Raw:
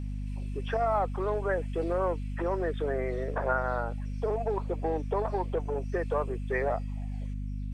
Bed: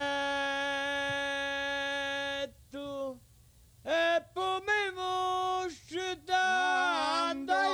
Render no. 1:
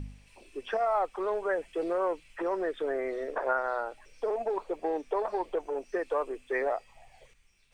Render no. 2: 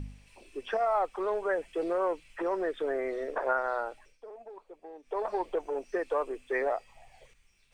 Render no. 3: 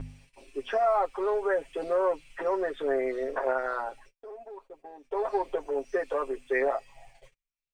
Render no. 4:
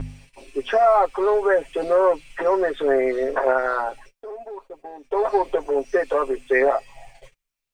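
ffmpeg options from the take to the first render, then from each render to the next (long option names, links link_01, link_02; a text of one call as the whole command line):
ffmpeg -i in.wav -af "bandreject=frequency=50:width_type=h:width=4,bandreject=frequency=100:width_type=h:width=4,bandreject=frequency=150:width_type=h:width=4,bandreject=frequency=200:width_type=h:width=4,bandreject=frequency=250:width_type=h:width=4" out.wav
ffmpeg -i in.wav -filter_complex "[0:a]asplit=3[link_01][link_02][link_03];[link_01]atrim=end=4.18,asetpts=PTS-STARTPTS,afade=type=out:start_time=3.85:duration=0.33:curve=qsin:silence=0.158489[link_04];[link_02]atrim=start=4.18:end=5.02,asetpts=PTS-STARTPTS,volume=-16dB[link_05];[link_03]atrim=start=5.02,asetpts=PTS-STARTPTS,afade=type=in:duration=0.33:curve=qsin:silence=0.158489[link_06];[link_04][link_05][link_06]concat=n=3:v=0:a=1" out.wav
ffmpeg -i in.wav -af "agate=range=-32dB:threshold=-55dB:ratio=16:detection=peak,aecho=1:1:7.4:0.78" out.wav
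ffmpeg -i in.wav -af "volume=8.5dB" out.wav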